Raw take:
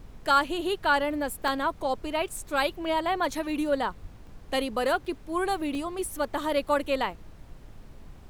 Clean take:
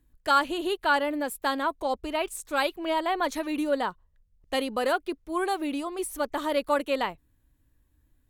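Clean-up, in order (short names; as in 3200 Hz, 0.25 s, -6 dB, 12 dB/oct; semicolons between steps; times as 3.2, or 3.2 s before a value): 4.01–4.13 HPF 140 Hz 24 dB/oct; interpolate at 1.48/4.27/5.05/5.75, 1.6 ms; noise print and reduce 19 dB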